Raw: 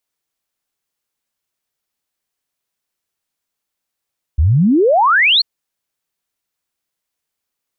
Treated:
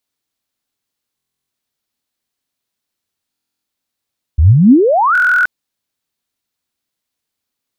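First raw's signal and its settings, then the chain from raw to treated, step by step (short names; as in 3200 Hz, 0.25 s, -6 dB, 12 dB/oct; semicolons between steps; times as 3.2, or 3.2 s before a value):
log sweep 67 Hz -> 4500 Hz 1.04 s -8.5 dBFS
fifteen-band EQ 100 Hz +6 dB, 250 Hz +7 dB, 4000 Hz +4 dB; stuck buffer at 1.16/3.31/5.13, samples 1024, times 13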